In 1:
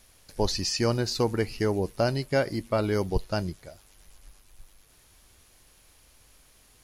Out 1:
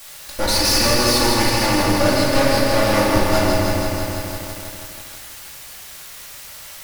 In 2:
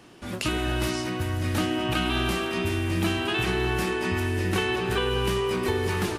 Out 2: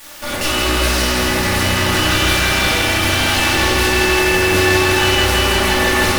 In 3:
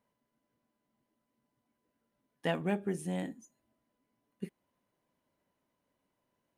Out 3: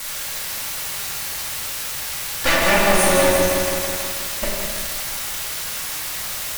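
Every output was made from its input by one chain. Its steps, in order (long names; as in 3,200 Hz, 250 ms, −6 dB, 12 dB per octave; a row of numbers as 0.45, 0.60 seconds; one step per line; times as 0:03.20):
lower of the sound and its delayed copy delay 3.4 ms
low-shelf EQ 120 Hz −10 dB
leveller curve on the samples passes 3
in parallel at −4 dB: bit-depth reduction 6 bits, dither triangular
on the sum: parametric band 280 Hz −14 dB 1.3 octaves
tube saturation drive 23 dB, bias 0.7
rectangular room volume 680 cubic metres, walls mixed, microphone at 2.3 metres
feedback echo at a low word length 162 ms, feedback 80%, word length 7 bits, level −4 dB
normalise the peak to −1.5 dBFS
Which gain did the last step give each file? +2.5, +2.5, +12.0 decibels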